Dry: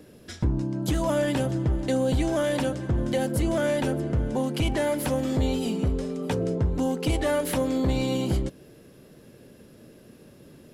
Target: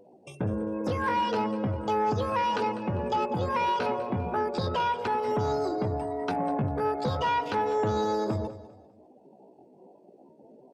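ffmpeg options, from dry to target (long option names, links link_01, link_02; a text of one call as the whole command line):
ffmpeg -i in.wav -filter_complex "[0:a]afftdn=noise_reduction=25:noise_floor=-42,asetrate=72056,aresample=44100,atempo=0.612027,acrossover=split=4400[link_01][link_02];[link_02]acompressor=threshold=-55dB:ratio=4:attack=1:release=60[link_03];[link_01][link_03]amix=inputs=2:normalize=0,lowpass=frequency=11000:width=0.5412,lowpass=frequency=11000:width=1.3066,bandreject=frequency=60:width_type=h:width=6,bandreject=frequency=120:width_type=h:width=6,bandreject=frequency=180:width_type=h:width=6,bandreject=frequency=240:width_type=h:width=6,bandreject=frequency=300:width_type=h:width=6,bandreject=frequency=360:width_type=h:width=6,bandreject=frequency=420:width_type=h:width=6,bandreject=frequency=480:width_type=h:width=6,bandreject=frequency=540:width_type=h:width=6,asoftclip=type=tanh:threshold=-18.5dB,highpass=frequency=130:poles=1,asplit=2[link_04][link_05];[link_05]aecho=0:1:199|398|597:0.168|0.052|0.0161[link_06];[link_04][link_06]amix=inputs=2:normalize=0" out.wav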